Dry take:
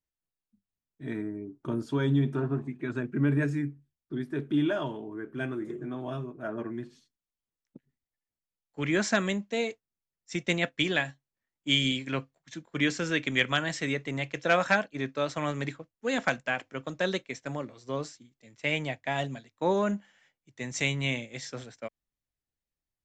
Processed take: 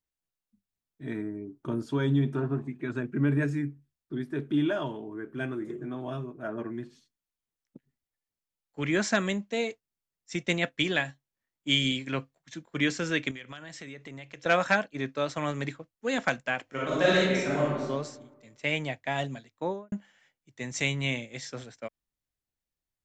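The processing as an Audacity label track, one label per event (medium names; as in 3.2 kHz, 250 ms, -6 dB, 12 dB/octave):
13.310000	14.460000	compression, threshold -40 dBFS
16.650000	17.820000	reverb throw, RT60 1.2 s, DRR -8 dB
19.490000	19.920000	studio fade out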